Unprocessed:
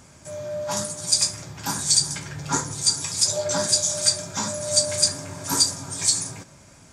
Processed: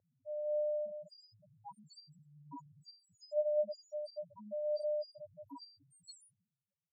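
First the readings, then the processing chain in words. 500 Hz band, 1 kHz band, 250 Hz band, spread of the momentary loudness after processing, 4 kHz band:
-5.5 dB, -23.5 dB, -22.5 dB, 22 LU, -34.5 dB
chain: Schroeder reverb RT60 0.4 s, combs from 30 ms, DRR 6.5 dB; loudest bins only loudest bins 1; band-pass sweep 550 Hz -> 6.4 kHz, 5.58–6.88 s

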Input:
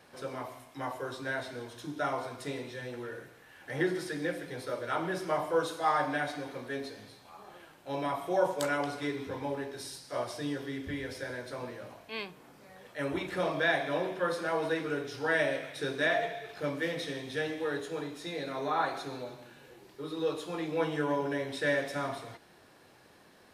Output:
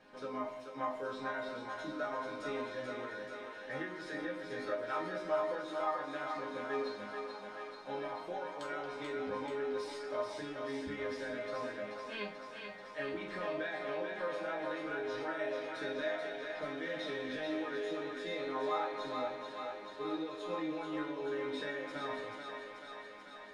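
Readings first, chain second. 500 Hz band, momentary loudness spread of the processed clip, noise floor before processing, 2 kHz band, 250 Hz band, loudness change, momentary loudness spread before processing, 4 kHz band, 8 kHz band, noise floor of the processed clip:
-4.5 dB, 7 LU, -59 dBFS, -6.5 dB, -5.5 dB, -5.5 dB, 15 LU, -5.5 dB, -11.5 dB, -50 dBFS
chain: treble shelf 4.7 kHz -6.5 dB; compression, threshold -35 dBFS, peak gain reduction 13 dB; distance through air 72 m; chord resonator G#3 major, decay 0.27 s; thinning echo 435 ms, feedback 75%, high-pass 360 Hz, level -5 dB; trim +16 dB

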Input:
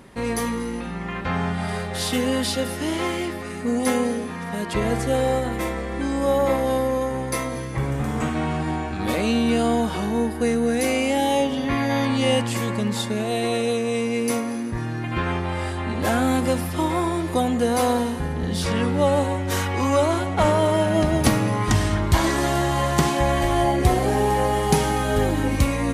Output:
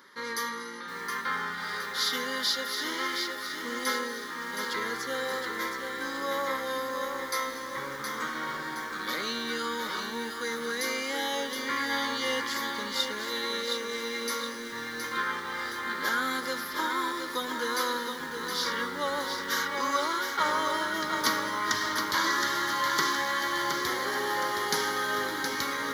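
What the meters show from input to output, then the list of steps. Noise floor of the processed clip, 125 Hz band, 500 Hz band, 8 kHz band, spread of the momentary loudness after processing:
-38 dBFS, -27.5 dB, -12.5 dB, -5.0 dB, 7 LU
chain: high-pass 690 Hz 12 dB/octave; static phaser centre 2.6 kHz, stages 6; bit-crushed delay 718 ms, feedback 55%, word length 8-bit, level -5.5 dB; trim +1.5 dB

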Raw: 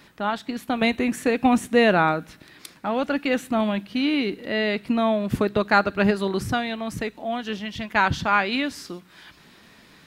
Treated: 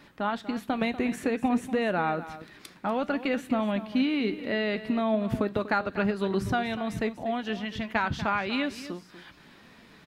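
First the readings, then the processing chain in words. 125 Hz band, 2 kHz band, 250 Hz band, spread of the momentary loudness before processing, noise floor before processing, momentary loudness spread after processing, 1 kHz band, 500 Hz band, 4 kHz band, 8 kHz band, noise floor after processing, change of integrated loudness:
-4.5 dB, -7.0 dB, -4.0 dB, 11 LU, -53 dBFS, 6 LU, -6.5 dB, -5.5 dB, -7.0 dB, no reading, -54 dBFS, -5.5 dB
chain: treble shelf 3.7 kHz -7.5 dB; compression, threshold -22 dBFS, peak gain reduction 9 dB; flange 0.53 Hz, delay 3.3 ms, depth 2.3 ms, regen +80%; delay 242 ms -14 dB; trim +3.5 dB

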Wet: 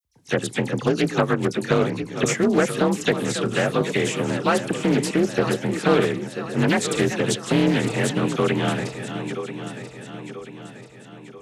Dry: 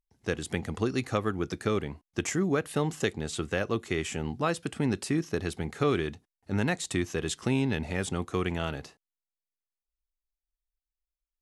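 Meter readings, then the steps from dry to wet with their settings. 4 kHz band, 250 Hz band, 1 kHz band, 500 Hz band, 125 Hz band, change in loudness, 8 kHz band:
+9.5 dB, +9.0 dB, +9.5 dB, +9.5 dB, +6.5 dB, +8.5 dB, +8.0 dB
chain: backward echo that repeats 493 ms, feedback 69%, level -9.5 dB; phase dispersion lows, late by 47 ms, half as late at 2.8 kHz; frequency shift +38 Hz; loudspeaker Doppler distortion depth 0.33 ms; trim +8 dB

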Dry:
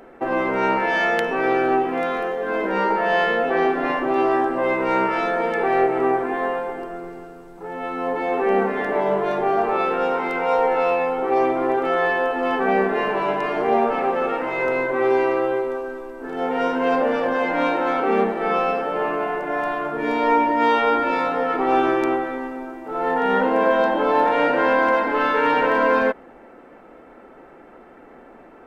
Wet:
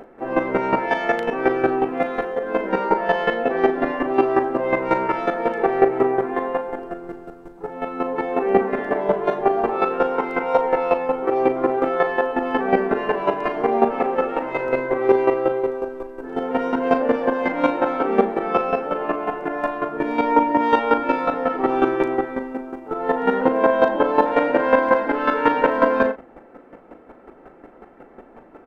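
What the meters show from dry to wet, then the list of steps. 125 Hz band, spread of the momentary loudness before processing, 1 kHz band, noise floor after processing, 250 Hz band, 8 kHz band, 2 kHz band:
+1.0 dB, 7 LU, -1.0 dB, -47 dBFS, +1.5 dB, no reading, -3.0 dB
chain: tilt shelf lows +3.5 dB, about 1.4 kHz; square tremolo 5.5 Hz, depth 65%, duty 15%; doubling 38 ms -10 dB; trim +3.5 dB

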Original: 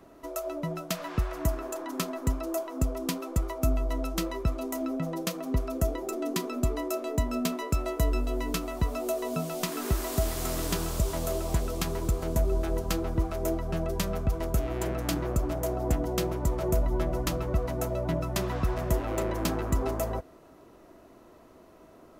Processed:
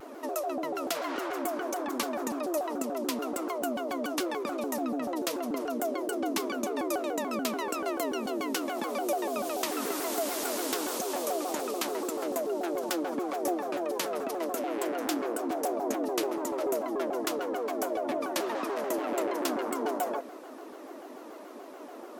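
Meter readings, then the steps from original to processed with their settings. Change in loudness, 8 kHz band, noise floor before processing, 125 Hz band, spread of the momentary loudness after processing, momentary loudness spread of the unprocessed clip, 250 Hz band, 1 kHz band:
-1.0 dB, +0.5 dB, -54 dBFS, under -25 dB, 3 LU, 4 LU, -0.5 dB, +4.0 dB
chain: elliptic high-pass 270 Hz, stop band 60 dB; in parallel at -1.5 dB: compressor with a negative ratio -43 dBFS, ratio -1; on the sum: vibrato with a chosen wave saw down 6.9 Hz, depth 250 cents

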